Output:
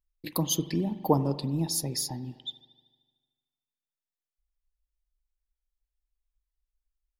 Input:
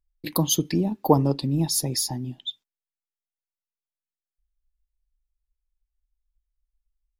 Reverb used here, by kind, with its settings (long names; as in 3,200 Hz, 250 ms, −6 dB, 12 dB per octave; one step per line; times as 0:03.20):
spring reverb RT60 1.5 s, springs 42 ms, chirp 60 ms, DRR 13 dB
level −5.5 dB